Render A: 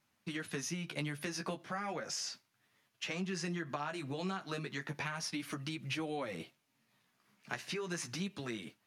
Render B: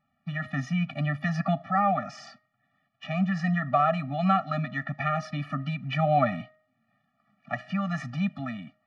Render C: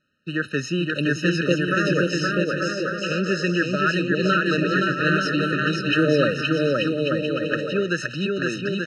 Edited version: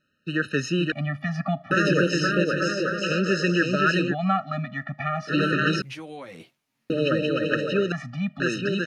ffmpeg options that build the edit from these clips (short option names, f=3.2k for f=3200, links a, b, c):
-filter_complex "[1:a]asplit=3[a][b][c];[2:a]asplit=5[d][e][f][g][h];[d]atrim=end=0.922[i];[a]atrim=start=0.918:end=1.712[j];[e]atrim=start=1.708:end=4.15[k];[b]atrim=start=4.09:end=5.33[l];[f]atrim=start=5.27:end=5.822[m];[0:a]atrim=start=5.818:end=6.902[n];[g]atrim=start=6.898:end=7.922[o];[c]atrim=start=7.918:end=8.402[p];[h]atrim=start=8.398[q];[i][j]acrossfade=d=0.004:c1=hsin:c2=hsin[r];[r][k]acrossfade=d=0.004:c1=hsin:c2=hsin[s];[s][l]acrossfade=d=0.06:c1=tri:c2=tri[t];[t][m]acrossfade=d=0.06:c1=tri:c2=tri[u];[u][n]acrossfade=d=0.004:c1=hsin:c2=hsin[v];[v][o]acrossfade=d=0.004:c1=hsin:c2=hsin[w];[w][p]acrossfade=d=0.004:c1=hsin:c2=hsin[x];[x][q]acrossfade=d=0.004:c1=hsin:c2=hsin"